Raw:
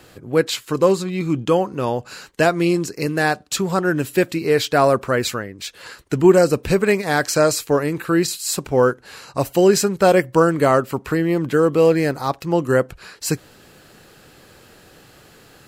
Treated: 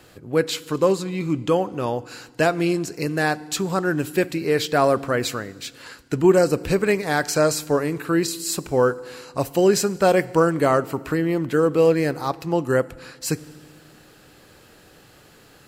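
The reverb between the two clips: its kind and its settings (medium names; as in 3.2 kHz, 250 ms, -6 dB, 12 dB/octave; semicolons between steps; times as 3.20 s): FDN reverb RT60 1.6 s, low-frequency decay 1.5×, high-frequency decay 0.95×, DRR 18 dB; trim -3 dB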